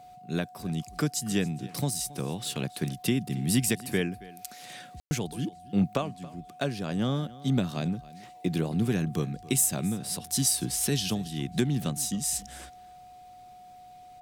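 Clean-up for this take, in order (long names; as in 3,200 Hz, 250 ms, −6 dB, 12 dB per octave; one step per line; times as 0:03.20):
notch filter 730 Hz, Q 30
ambience match 0:05.00–0:05.11
echo removal 275 ms −20 dB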